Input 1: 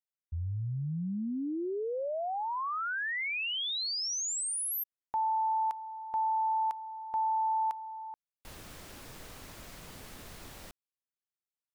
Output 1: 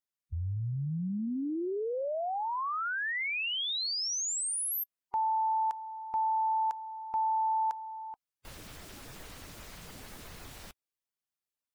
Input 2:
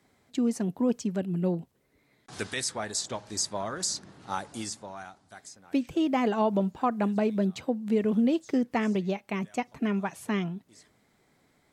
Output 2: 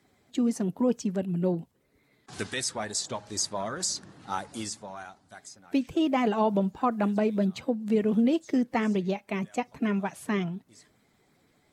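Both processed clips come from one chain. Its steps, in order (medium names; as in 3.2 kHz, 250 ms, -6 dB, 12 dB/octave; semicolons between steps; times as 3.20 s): coarse spectral quantiser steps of 15 dB; trim +1 dB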